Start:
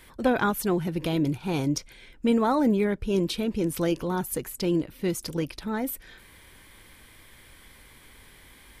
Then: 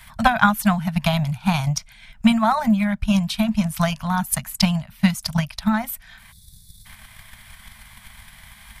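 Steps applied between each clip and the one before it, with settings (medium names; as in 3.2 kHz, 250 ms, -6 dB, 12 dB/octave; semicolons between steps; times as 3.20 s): time-frequency box 6.32–6.85 s, 210–3400 Hz -30 dB; transient shaper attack +11 dB, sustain -4 dB; Chebyshev band-stop 220–640 Hz, order 4; trim +7 dB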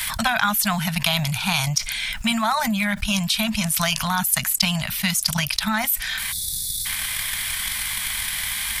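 tilt shelf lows -9 dB, about 1.4 kHz; level flattener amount 70%; trim -7 dB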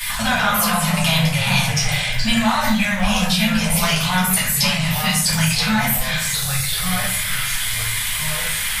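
simulated room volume 75 m³, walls mixed, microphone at 1.8 m; ever faster or slower copies 87 ms, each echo -3 st, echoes 2, each echo -6 dB; trim -5 dB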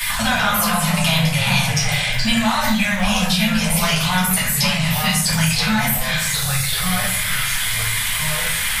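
three bands compressed up and down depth 40%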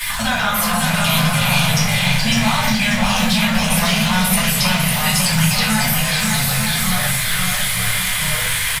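crossover distortion -40 dBFS; bouncing-ball echo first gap 550 ms, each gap 0.65×, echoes 5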